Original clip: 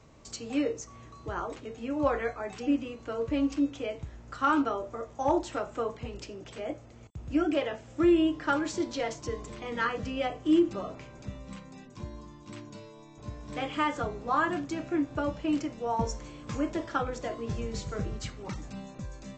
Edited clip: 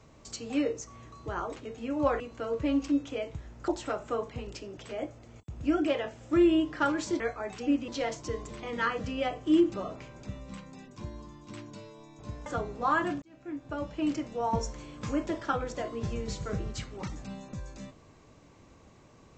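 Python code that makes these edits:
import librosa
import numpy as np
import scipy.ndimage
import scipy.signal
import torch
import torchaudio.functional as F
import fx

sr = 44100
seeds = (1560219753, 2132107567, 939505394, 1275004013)

y = fx.edit(x, sr, fx.move(start_s=2.2, length_s=0.68, to_s=8.87),
    fx.cut(start_s=4.36, length_s=0.99),
    fx.cut(start_s=13.45, length_s=0.47),
    fx.fade_in_span(start_s=14.68, length_s=0.96), tone=tone)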